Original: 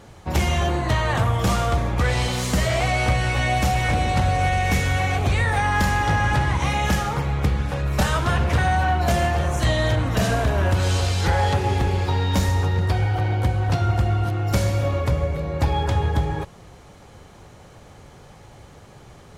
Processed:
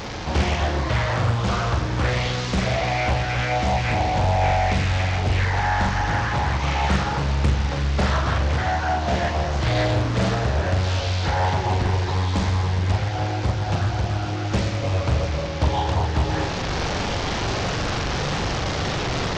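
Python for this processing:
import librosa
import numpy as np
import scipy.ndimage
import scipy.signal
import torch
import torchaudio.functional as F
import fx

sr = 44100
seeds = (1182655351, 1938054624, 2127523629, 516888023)

y = fx.delta_mod(x, sr, bps=32000, step_db=-27.0)
y = fx.rider(y, sr, range_db=10, speed_s=0.5)
y = fx.room_flutter(y, sr, wall_m=7.2, rt60_s=0.48)
y = fx.doppler_dist(y, sr, depth_ms=0.83)
y = y * 10.0 ** (-2.5 / 20.0)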